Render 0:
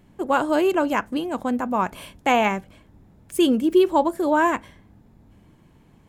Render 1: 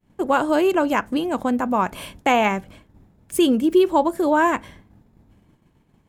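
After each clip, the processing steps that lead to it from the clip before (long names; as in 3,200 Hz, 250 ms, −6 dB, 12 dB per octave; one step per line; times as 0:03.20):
downward expander −45 dBFS
in parallel at +0.5 dB: downward compressor, threshold −25 dBFS, peak gain reduction 12.5 dB
on the sum: level −1.5 dB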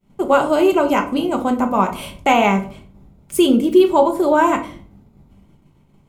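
Butterworth band-reject 1,700 Hz, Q 6.3
convolution reverb RT60 0.45 s, pre-delay 5 ms, DRR 4 dB
level +2 dB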